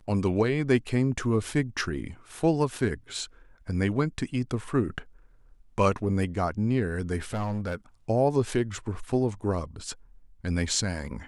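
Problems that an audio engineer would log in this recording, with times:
7.33–7.76 clipped -26 dBFS

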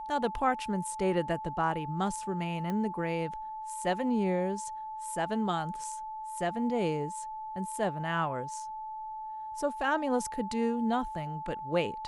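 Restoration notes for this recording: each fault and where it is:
tone 870 Hz -37 dBFS
2.7 pop -22 dBFS

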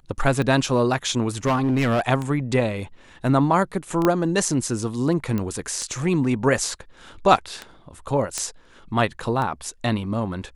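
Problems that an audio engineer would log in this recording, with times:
tick 33 1/3 rpm -15 dBFS
1.45–2.01 clipped -16.5 dBFS
4.05 pop -6 dBFS
5.38 pop -14 dBFS
8.38 pop -10 dBFS

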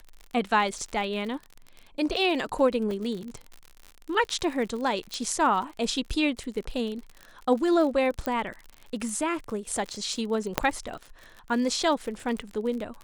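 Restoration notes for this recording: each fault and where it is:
crackle 58/s -34 dBFS
2.91 gap 3.1 ms
5.14 pop -18 dBFS
8.26 pop -14 dBFS
10.58 pop -5 dBFS

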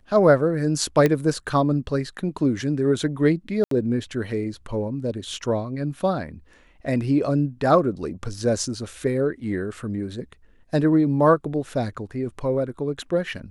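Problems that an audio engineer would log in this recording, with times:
1.06 pop -8 dBFS
3.64–3.71 gap 73 ms

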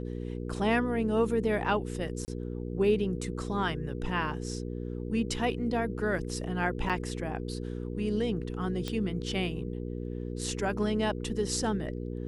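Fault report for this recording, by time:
hum 60 Hz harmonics 8 -36 dBFS
2.25–2.28 gap 29 ms
6.89–6.9 gap 6.9 ms
8.88 pop -19 dBFS

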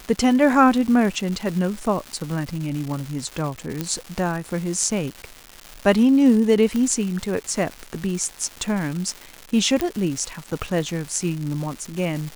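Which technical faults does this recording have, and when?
crackle 400/s -28 dBFS
3.81 pop -10 dBFS
6.76 pop -12 dBFS
9.81 pop -8 dBFS

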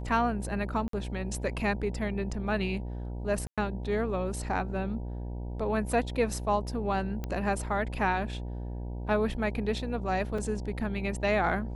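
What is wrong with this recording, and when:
buzz 60 Hz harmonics 16 -36 dBFS
0.88–0.93 gap 53 ms
3.47–3.58 gap 0.106 s
7.24 pop -21 dBFS
10.38 gap 4.3 ms

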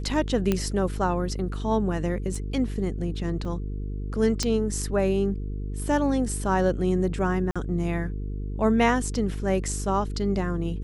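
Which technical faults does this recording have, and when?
buzz 50 Hz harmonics 9 -31 dBFS
0.52 pop -10 dBFS
2.35 gap 3.9 ms
3.45 gap 3.4 ms
4.43 pop -11 dBFS
7.51–7.56 gap 46 ms

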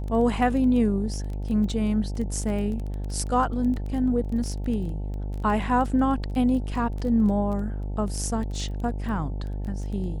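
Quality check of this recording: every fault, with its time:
buzz 50 Hz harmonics 18 -30 dBFS
crackle 16/s -31 dBFS

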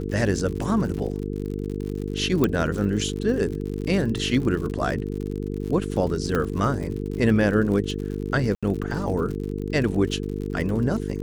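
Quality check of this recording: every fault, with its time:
buzz 50 Hz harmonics 9 -29 dBFS
crackle 73/s -31 dBFS
2.44 pop -8 dBFS
6.35 pop -12 dBFS
8.55–8.63 gap 76 ms

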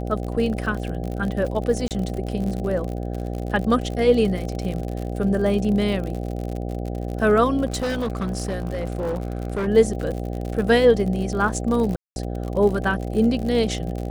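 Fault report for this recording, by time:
buzz 60 Hz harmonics 13 -28 dBFS
crackle 67/s -28 dBFS
1.88–1.91 gap 28 ms
7.65–9.68 clipped -21 dBFS
11.96–12.16 gap 0.201 s

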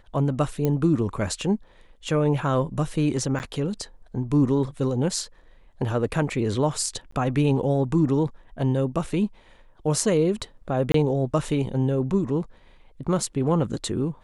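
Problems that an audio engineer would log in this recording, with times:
0.65 pop -12 dBFS
3.39–3.4 gap 9.4 ms
7.11–7.12 gap 14 ms
10.92–10.94 gap 23 ms

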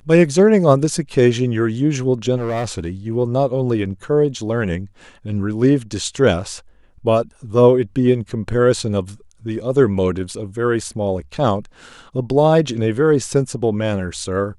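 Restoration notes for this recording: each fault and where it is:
2.37–2.9 clipped -18 dBFS

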